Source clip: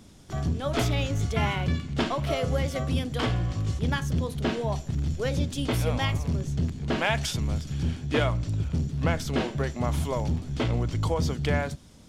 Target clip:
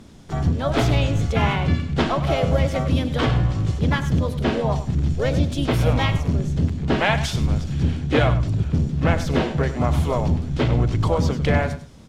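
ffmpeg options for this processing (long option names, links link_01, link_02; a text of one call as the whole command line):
ffmpeg -i in.wav -filter_complex "[0:a]aemphasis=mode=reproduction:type=cd,aecho=1:1:100|200:0.237|0.0403,asplit=2[link_01][link_02];[link_02]asetrate=52444,aresample=44100,atempo=0.840896,volume=-8dB[link_03];[link_01][link_03]amix=inputs=2:normalize=0,volume=5.5dB" out.wav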